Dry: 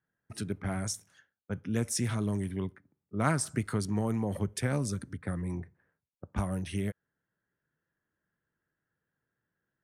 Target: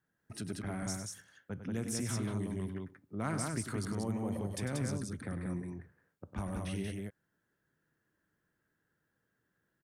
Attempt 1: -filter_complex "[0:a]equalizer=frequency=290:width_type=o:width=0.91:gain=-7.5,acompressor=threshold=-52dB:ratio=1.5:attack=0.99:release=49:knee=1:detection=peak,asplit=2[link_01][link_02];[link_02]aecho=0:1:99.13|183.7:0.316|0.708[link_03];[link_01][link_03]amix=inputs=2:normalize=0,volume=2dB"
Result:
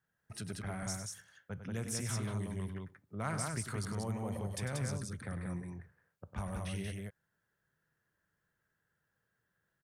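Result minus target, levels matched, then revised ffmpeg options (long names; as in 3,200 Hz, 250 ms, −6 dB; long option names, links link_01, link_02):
250 Hz band −3.0 dB
-filter_complex "[0:a]equalizer=frequency=290:width_type=o:width=0.91:gain=3,acompressor=threshold=-52dB:ratio=1.5:attack=0.99:release=49:knee=1:detection=peak,asplit=2[link_01][link_02];[link_02]aecho=0:1:99.13|183.7:0.316|0.708[link_03];[link_01][link_03]amix=inputs=2:normalize=0,volume=2dB"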